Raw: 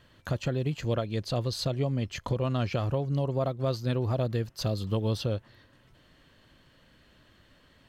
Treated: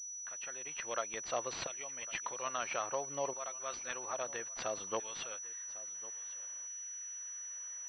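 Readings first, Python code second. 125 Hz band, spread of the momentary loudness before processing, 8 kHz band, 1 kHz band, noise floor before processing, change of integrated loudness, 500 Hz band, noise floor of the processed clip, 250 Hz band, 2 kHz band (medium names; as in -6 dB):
-33.0 dB, 3 LU, +13.5 dB, -2.0 dB, -62 dBFS, -9.0 dB, -9.5 dB, -45 dBFS, -21.5 dB, 0.0 dB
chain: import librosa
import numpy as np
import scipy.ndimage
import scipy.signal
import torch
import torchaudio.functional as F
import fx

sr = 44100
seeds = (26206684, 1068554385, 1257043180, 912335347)

y = fx.fade_in_head(x, sr, length_s=0.85)
y = fx.filter_lfo_highpass(y, sr, shape='saw_down', hz=0.6, low_hz=730.0, high_hz=2000.0, q=0.83)
y = y + 10.0 ** (-19.0 / 20.0) * np.pad(y, (int(1103 * sr / 1000.0), 0))[:len(y)]
y = fx.pwm(y, sr, carrier_hz=5900.0)
y = y * librosa.db_to_amplitude(2.5)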